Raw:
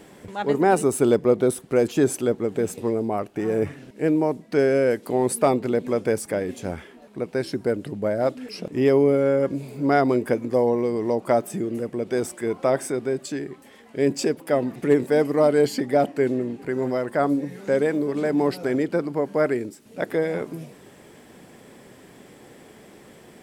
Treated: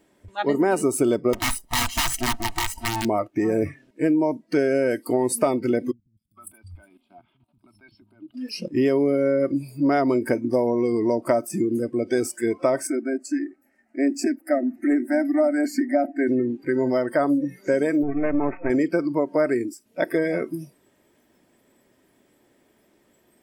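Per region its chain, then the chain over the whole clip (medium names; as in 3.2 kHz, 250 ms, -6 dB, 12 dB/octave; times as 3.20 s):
1.33–3.05 s: comb filter that takes the minimum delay 0.99 ms + integer overflow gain 20.5 dB
5.91–8.34 s: level held to a coarse grid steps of 16 dB + static phaser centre 1.8 kHz, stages 6 + three bands offset in time lows, highs, mids 260/460 ms, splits 180/5700 Hz
12.87–16.28 s: treble shelf 7.1 kHz -7 dB + static phaser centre 690 Hz, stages 8
18.03–18.70 s: partial rectifier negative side -12 dB + careless resampling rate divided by 8×, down none, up filtered + tape noise reduction on one side only decoder only
whole clip: spectral noise reduction 19 dB; comb 3.2 ms, depth 36%; compression 5:1, threshold -21 dBFS; trim +4 dB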